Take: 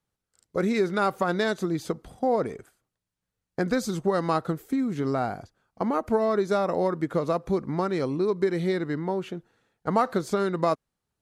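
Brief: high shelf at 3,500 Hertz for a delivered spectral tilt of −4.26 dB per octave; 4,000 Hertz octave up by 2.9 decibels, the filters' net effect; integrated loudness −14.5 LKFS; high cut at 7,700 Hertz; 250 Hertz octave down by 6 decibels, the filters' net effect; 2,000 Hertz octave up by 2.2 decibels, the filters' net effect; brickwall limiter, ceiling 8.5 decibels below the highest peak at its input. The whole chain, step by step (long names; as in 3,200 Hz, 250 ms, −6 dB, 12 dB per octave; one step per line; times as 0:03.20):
low-pass filter 7,700 Hz
parametric band 250 Hz −9 dB
parametric band 2,000 Hz +3.5 dB
high-shelf EQ 3,500 Hz −6 dB
parametric band 4,000 Hz +6.5 dB
level +16 dB
brickwall limiter −2.5 dBFS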